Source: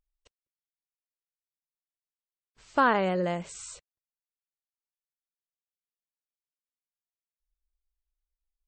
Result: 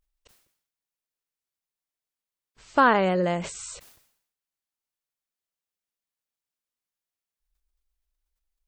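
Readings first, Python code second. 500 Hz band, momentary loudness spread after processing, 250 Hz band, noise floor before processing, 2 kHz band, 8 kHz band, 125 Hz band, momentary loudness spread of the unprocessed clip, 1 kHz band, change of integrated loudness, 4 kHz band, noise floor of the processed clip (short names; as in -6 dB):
+4.0 dB, 18 LU, +4.0 dB, under -85 dBFS, +4.0 dB, +4.5 dB, +4.0 dB, 18 LU, +4.0 dB, +3.5 dB, +4.5 dB, under -85 dBFS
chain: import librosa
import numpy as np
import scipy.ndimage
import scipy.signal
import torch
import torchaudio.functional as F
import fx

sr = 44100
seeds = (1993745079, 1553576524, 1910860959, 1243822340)

y = fx.sustainer(x, sr, db_per_s=83.0)
y = y * 10.0 ** (4.0 / 20.0)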